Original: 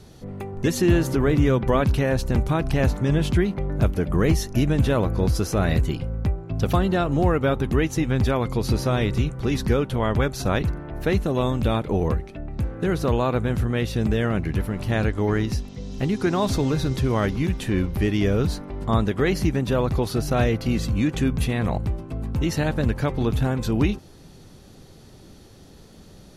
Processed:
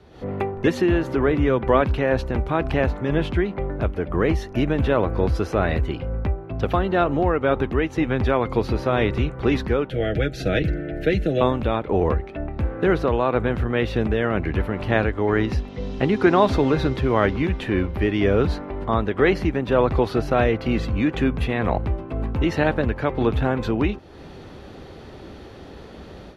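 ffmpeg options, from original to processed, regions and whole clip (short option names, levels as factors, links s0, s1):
-filter_complex "[0:a]asettb=1/sr,asplit=3[s0][s1][s2];[s0]atrim=end=9.904[s3];[s1]atrim=start=9.9:end=11.41,asetpts=PTS-STARTPTS,afade=t=in:d=0.004:c=qsin,afade=t=out:st=1.506:d=0.004:c=qsin,aecho=1:1:6.3:0.54,atrim=end_sample=66591,acrossover=split=140|3000[s4][s5][s6];[s5]acompressor=threshold=0.0398:ratio=1.5:attack=3.2:release=140:knee=2.83:detection=peak[s7];[s4][s7][s6]amix=inputs=3:normalize=0,asuperstop=centerf=1000:order=4:qfactor=1.1[s8];[s2]atrim=start=11.406[s9];[s3][s8]acrossfade=d=0.004:c1=hsin:c2=qsin[s10];[s10][s9]acrossfade=d=0.004:c1=qsin:c2=hsin,equalizer=f=66:w=1:g=11.5,dynaudnorm=f=110:g=3:m=3.76,acrossover=split=270 3400:gain=0.2 1 0.0891[s11][s12][s13];[s11][s12][s13]amix=inputs=3:normalize=0"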